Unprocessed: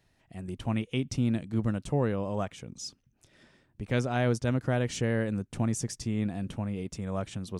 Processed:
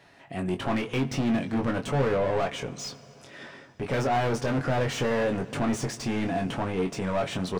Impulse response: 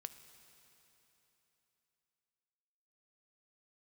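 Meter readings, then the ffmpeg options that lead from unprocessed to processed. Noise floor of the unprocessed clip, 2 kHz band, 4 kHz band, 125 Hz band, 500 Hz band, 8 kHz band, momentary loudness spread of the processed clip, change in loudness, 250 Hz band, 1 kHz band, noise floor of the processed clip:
-70 dBFS, +5.5 dB, +5.5 dB, -0.5 dB, +5.5 dB, +1.0 dB, 13 LU, +3.0 dB, +2.5 dB, +8.5 dB, -52 dBFS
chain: -filter_complex "[0:a]aecho=1:1:7.2:0.31,asplit=2[s0][s1];[s1]highpass=f=720:p=1,volume=39.8,asoftclip=type=tanh:threshold=0.224[s2];[s0][s2]amix=inputs=2:normalize=0,lowpass=f=1500:p=1,volume=0.501,asplit=2[s3][s4];[1:a]atrim=start_sample=2205,adelay=22[s5];[s4][s5]afir=irnorm=-1:irlink=0,volume=0.944[s6];[s3][s6]amix=inputs=2:normalize=0,volume=0.531"

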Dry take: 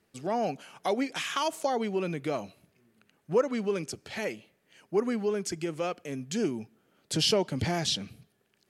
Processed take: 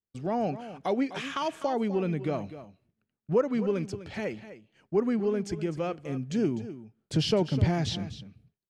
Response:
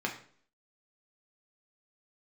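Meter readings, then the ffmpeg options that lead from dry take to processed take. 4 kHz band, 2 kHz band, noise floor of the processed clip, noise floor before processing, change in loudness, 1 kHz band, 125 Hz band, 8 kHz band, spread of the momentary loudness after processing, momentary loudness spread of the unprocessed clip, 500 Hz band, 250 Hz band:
-5.5 dB, -3.0 dB, under -85 dBFS, -73 dBFS, +1.0 dB, -1.0 dB, +6.5 dB, -9.5 dB, 11 LU, 9 LU, +0.5 dB, +3.5 dB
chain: -af "agate=range=0.0224:threshold=0.00224:ratio=3:detection=peak,aemphasis=mode=reproduction:type=bsi,aecho=1:1:252:0.211,volume=0.841"

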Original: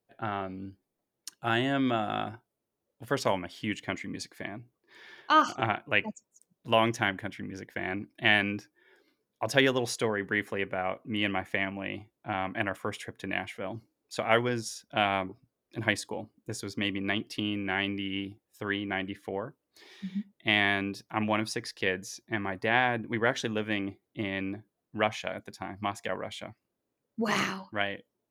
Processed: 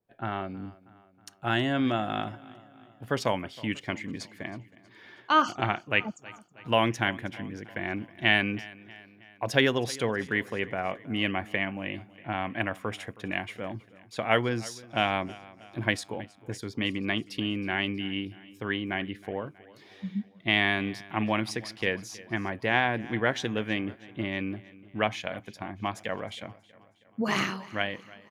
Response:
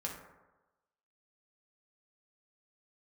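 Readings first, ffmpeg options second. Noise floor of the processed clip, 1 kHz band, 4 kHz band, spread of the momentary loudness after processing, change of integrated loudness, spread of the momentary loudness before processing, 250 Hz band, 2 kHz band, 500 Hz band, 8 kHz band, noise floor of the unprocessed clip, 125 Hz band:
-58 dBFS, 0.0 dB, +1.0 dB, 15 LU, +1.0 dB, 15 LU, +1.5 dB, +0.5 dB, +0.5 dB, -1.5 dB, -84 dBFS, +3.0 dB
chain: -af "bass=f=250:g=3,treble=f=4000:g=-8,aecho=1:1:319|638|957|1276:0.0944|0.0519|0.0286|0.0157,adynamicequalizer=threshold=0.00708:dfrequency=2800:dqfactor=0.7:tfrequency=2800:tqfactor=0.7:attack=5:release=100:ratio=0.375:range=3:mode=boostabove:tftype=highshelf"

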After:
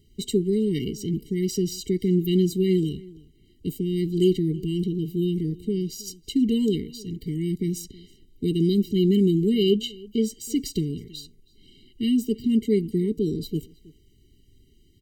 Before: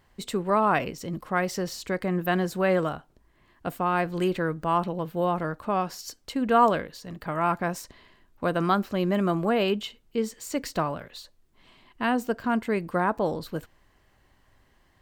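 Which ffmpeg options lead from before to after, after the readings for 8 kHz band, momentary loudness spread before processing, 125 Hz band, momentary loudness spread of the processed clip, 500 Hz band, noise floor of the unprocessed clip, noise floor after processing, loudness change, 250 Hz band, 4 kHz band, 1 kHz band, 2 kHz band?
+4.0 dB, 13 LU, +6.5 dB, 11 LU, +1.0 dB, -64 dBFS, -58 dBFS, +2.0 dB, +6.5 dB, +4.5 dB, under -40 dB, -15.5 dB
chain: -filter_complex "[0:a]asuperstop=centerf=1200:order=8:qfactor=0.56,asplit=2[s0][s1];[s1]adelay=320.7,volume=0.0794,highshelf=f=4000:g=-7.22[s2];[s0][s2]amix=inputs=2:normalize=0,afftfilt=real='re*eq(mod(floor(b*sr/1024/460),2),0)':imag='im*eq(mod(floor(b*sr/1024/460),2),0)':win_size=1024:overlap=0.75,volume=2.11"

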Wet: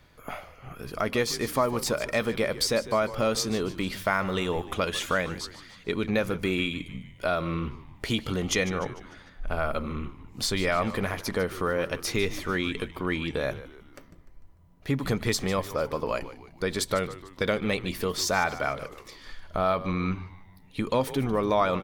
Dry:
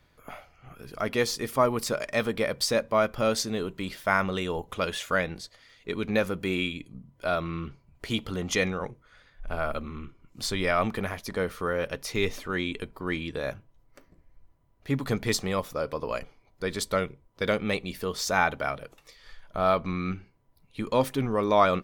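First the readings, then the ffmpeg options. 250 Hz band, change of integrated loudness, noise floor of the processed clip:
+1.0 dB, +0.5 dB, -53 dBFS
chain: -filter_complex "[0:a]acompressor=threshold=0.0251:ratio=2,asplit=2[s0][s1];[s1]asplit=5[s2][s3][s4][s5][s6];[s2]adelay=149,afreqshift=-92,volume=0.178[s7];[s3]adelay=298,afreqshift=-184,volume=0.0871[s8];[s4]adelay=447,afreqshift=-276,volume=0.0427[s9];[s5]adelay=596,afreqshift=-368,volume=0.0209[s10];[s6]adelay=745,afreqshift=-460,volume=0.0102[s11];[s7][s8][s9][s10][s11]amix=inputs=5:normalize=0[s12];[s0][s12]amix=inputs=2:normalize=0,volume=1.88"

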